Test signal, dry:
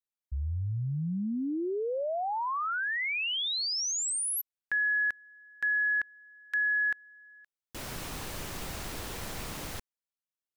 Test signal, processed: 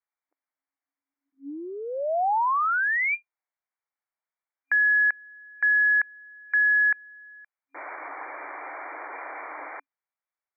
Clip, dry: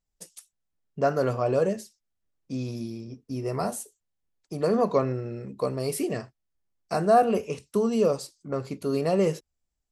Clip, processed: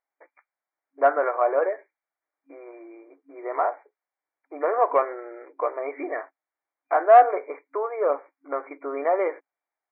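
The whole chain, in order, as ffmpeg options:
-af "afftfilt=real='re*between(b*sr/4096,270,2400)':imag='im*between(b*sr/4096,270,2400)':win_size=4096:overlap=0.75,acontrast=68,lowshelf=f=550:t=q:w=1.5:g=-8.5"

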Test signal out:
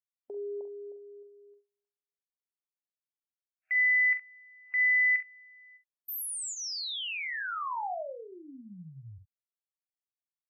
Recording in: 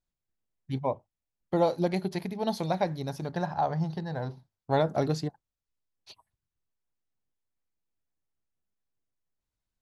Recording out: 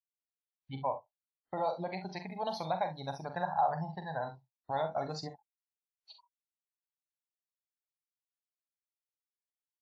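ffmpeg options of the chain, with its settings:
-af "alimiter=limit=-21.5dB:level=0:latency=1:release=107,lowshelf=f=530:t=q:w=1.5:g=-9.5,agate=range=-33dB:threshold=-57dB:ratio=3:detection=peak,afftdn=nr=24:nf=-45,bandreject=f=6.5k:w=13,aecho=1:1:11|44|66:0.178|0.355|0.2" -ar 32000 -c:a wmav2 -b:a 64k

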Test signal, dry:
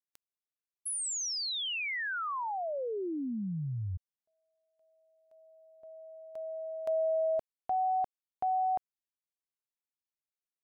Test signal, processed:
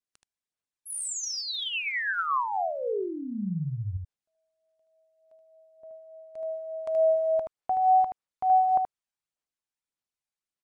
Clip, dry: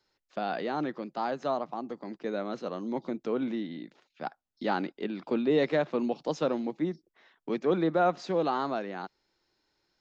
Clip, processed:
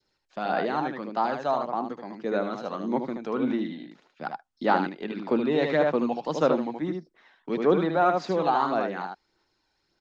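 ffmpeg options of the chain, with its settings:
-filter_complex "[0:a]adynamicequalizer=threshold=0.00708:dfrequency=1100:dqfactor=0.71:tfrequency=1100:tqfactor=0.71:attack=5:release=100:ratio=0.375:range=2.5:mode=boostabove:tftype=bell,asplit=2[a][b];[b]aecho=0:1:76:0.562[c];[a][c]amix=inputs=2:normalize=0,aresample=22050,aresample=44100,aphaser=in_gain=1:out_gain=1:delay=1.3:decay=0.36:speed=1.7:type=sinusoidal"

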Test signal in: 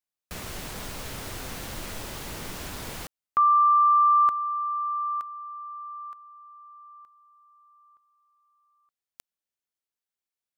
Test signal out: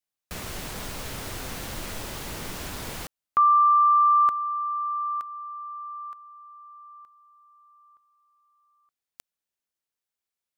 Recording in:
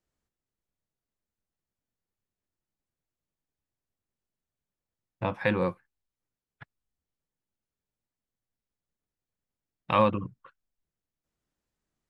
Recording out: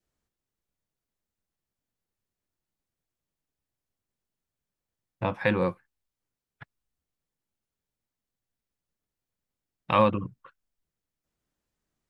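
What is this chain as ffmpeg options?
-af "adynamicequalizer=threshold=0.0158:dfrequency=1000:dqfactor=3.3:tfrequency=1000:tqfactor=3.3:attack=5:release=100:ratio=0.375:range=1.5:mode=cutabove:tftype=bell,volume=1.5dB"

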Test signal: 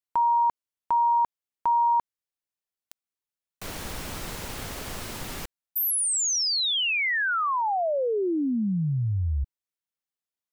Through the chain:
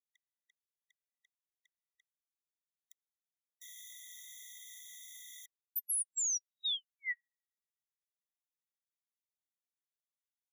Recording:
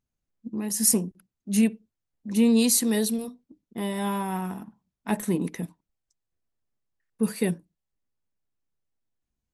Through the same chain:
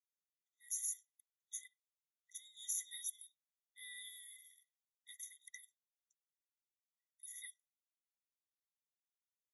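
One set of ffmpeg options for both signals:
-af "asuperstop=centerf=2600:order=20:qfactor=2.1,alimiter=limit=-19dB:level=0:latency=1:release=32,afftfilt=real='re*eq(mod(floor(b*sr/1024/1900),2),1)':imag='im*eq(mod(floor(b*sr/1024/1900),2),1)':win_size=1024:overlap=0.75,volume=-7.5dB"

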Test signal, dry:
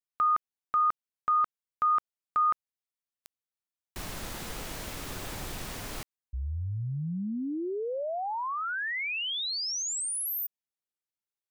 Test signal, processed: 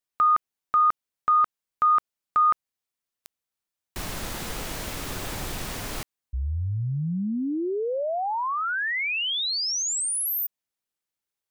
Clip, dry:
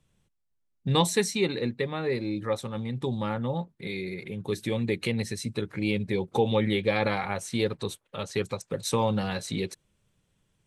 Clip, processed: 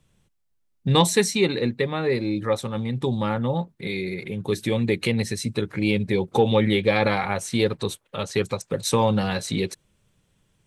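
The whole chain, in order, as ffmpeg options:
-af "acontrast=36"

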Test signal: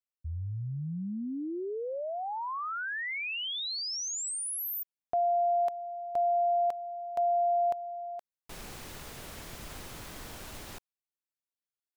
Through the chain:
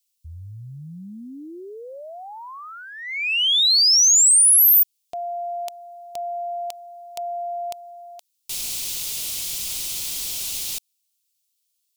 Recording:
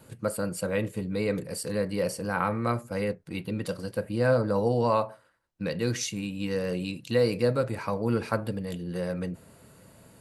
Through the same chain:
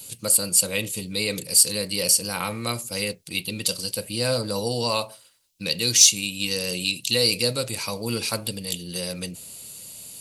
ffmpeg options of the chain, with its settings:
-af "aexciter=amount=6.2:drive=8.8:freq=2.5k,volume=-2dB"

